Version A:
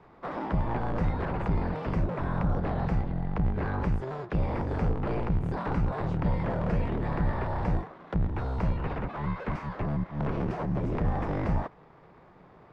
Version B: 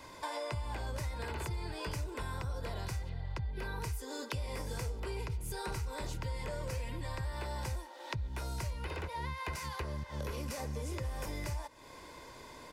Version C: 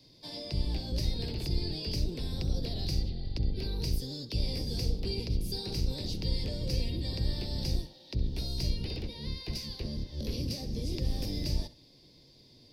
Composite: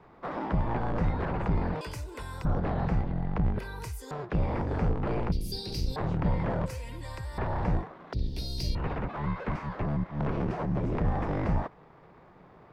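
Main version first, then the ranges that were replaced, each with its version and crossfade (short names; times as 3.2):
A
1.81–2.45 from B
3.59–4.11 from B
5.32–5.96 from C
6.66–7.38 from B
8.13–8.75 from C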